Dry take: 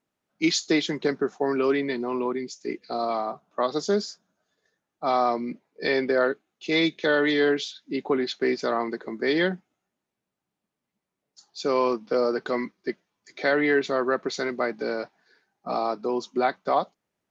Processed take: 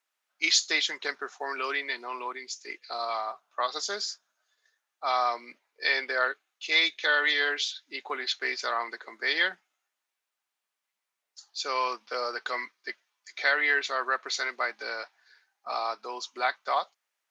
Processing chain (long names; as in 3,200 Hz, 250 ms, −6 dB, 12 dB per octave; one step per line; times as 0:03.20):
high-pass filter 1,200 Hz 12 dB per octave
level +3.5 dB